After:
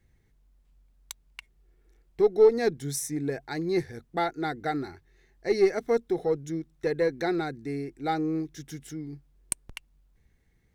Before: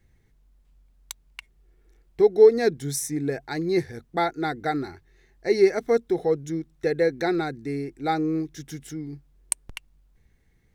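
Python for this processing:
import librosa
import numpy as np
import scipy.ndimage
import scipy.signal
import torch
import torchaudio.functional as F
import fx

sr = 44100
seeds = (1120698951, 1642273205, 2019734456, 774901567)

y = fx.diode_clip(x, sr, knee_db=-6.0)
y = F.gain(torch.from_numpy(y), -3.0).numpy()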